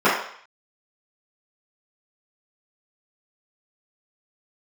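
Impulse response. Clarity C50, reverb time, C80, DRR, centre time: 3.0 dB, 0.60 s, 7.0 dB, -13.5 dB, 46 ms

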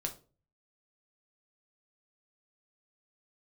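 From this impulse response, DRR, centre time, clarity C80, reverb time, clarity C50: 3.0 dB, 11 ms, 19.0 dB, 0.35 s, 13.0 dB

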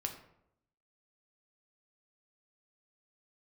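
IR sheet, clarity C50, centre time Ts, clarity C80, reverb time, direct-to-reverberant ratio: 9.0 dB, 16 ms, 11.5 dB, 0.75 s, 3.5 dB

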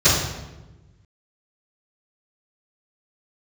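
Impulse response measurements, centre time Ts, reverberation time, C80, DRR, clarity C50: 63 ms, 1.1 s, 4.0 dB, -19.0 dB, 1.0 dB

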